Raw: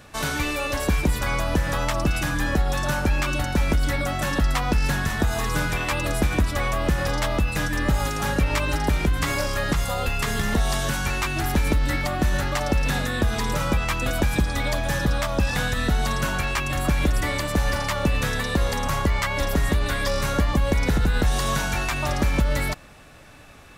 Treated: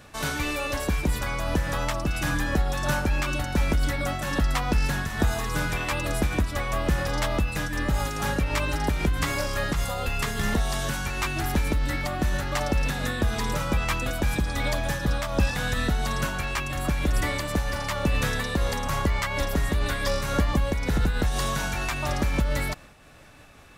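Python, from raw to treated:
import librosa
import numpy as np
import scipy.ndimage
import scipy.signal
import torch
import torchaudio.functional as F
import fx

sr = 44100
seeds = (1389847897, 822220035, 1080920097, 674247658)

y = fx.am_noise(x, sr, seeds[0], hz=5.7, depth_pct=55)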